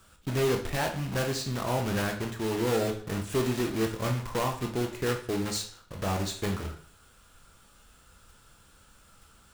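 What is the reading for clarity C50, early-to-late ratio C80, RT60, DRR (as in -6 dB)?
9.0 dB, 13.5 dB, 0.50 s, 2.5 dB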